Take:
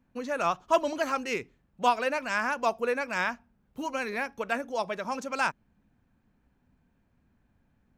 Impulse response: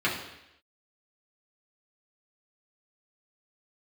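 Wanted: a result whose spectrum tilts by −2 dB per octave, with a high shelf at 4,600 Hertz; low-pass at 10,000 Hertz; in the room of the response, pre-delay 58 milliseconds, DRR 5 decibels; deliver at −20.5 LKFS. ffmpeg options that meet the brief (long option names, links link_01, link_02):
-filter_complex "[0:a]lowpass=10000,highshelf=frequency=4600:gain=-8,asplit=2[link_01][link_02];[1:a]atrim=start_sample=2205,adelay=58[link_03];[link_02][link_03]afir=irnorm=-1:irlink=0,volume=-17.5dB[link_04];[link_01][link_04]amix=inputs=2:normalize=0,volume=9dB"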